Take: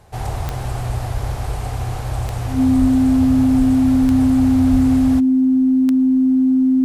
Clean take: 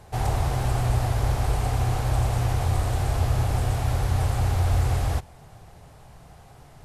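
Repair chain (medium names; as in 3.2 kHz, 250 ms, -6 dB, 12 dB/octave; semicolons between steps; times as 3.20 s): de-click; band-stop 260 Hz, Q 30; de-plosive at 1.13/2.80/3.58/4.02/4.72 s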